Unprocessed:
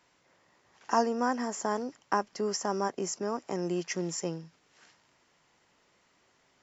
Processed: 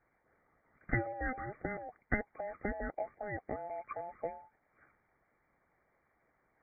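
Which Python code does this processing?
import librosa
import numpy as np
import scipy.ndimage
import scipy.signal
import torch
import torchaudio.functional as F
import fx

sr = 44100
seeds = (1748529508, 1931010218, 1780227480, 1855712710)

y = fx.band_invert(x, sr, width_hz=1000)
y = fx.brickwall_lowpass(y, sr, high_hz=2400.0)
y = fx.hpss(y, sr, part='harmonic', gain_db=-9)
y = y * librosa.db_to_amplitude(-2.0)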